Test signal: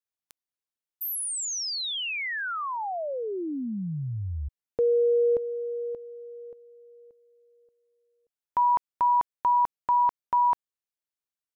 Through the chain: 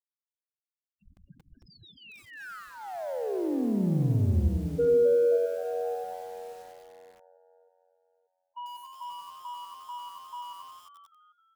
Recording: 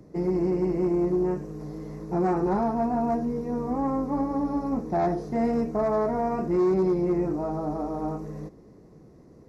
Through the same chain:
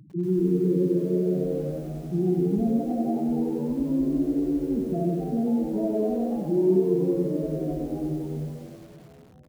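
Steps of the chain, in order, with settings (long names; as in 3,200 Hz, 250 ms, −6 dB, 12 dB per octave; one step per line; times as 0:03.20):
running median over 41 samples
Chebyshev low-pass filter 5,000 Hz, order 6
low-shelf EQ 340 Hz +10.5 dB
spectral peaks only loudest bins 4
echo with shifted repeats 263 ms, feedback 47%, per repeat +89 Hz, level −9.5 dB
feedback echo at a low word length 93 ms, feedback 55%, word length 8 bits, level −4 dB
level −3.5 dB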